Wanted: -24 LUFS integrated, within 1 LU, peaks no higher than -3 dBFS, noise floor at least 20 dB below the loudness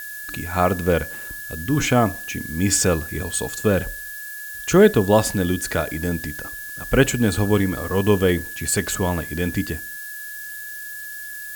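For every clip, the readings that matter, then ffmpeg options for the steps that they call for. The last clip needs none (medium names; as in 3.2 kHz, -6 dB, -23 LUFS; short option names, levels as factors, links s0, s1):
steady tone 1.7 kHz; tone level -33 dBFS; noise floor -34 dBFS; noise floor target -42 dBFS; loudness -22.0 LUFS; peak level -3.0 dBFS; loudness target -24.0 LUFS
-> -af "bandreject=f=1700:w=30"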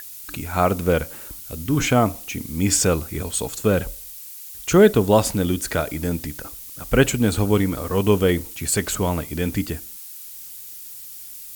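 steady tone not found; noise floor -38 dBFS; noise floor target -41 dBFS
-> -af "afftdn=nr=6:nf=-38"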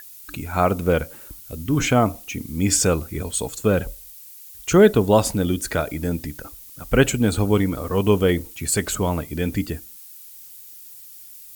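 noise floor -43 dBFS; loudness -21.0 LUFS; peak level -3.0 dBFS; loudness target -24.0 LUFS
-> -af "volume=0.708"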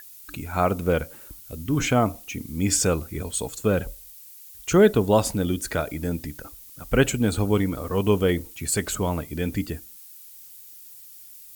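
loudness -24.0 LUFS; peak level -6.0 dBFS; noise floor -46 dBFS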